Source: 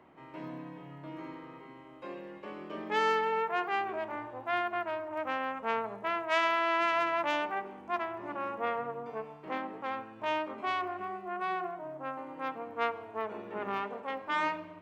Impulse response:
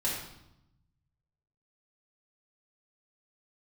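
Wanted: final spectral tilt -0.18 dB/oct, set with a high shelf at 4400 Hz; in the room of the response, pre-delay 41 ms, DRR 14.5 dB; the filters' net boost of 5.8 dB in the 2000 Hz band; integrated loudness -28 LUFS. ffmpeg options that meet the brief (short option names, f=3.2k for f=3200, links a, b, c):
-filter_complex "[0:a]equalizer=f=2k:t=o:g=5.5,highshelf=f=4.4k:g=8,asplit=2[a][b];[1:a]atrim=start_sample=2205,adelay=41[c];[b][c]afir=irnorm=-1:irlink=0,volume=-21dB[d];[a][d]amix=inputs=2:normalize=0,volume=2.5dB"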